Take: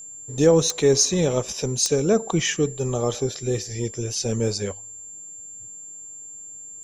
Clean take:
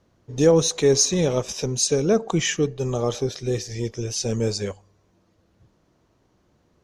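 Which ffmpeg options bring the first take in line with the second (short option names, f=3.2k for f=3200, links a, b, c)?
-af "adeclick=t=4,bandreject=f=7.3k:w=30"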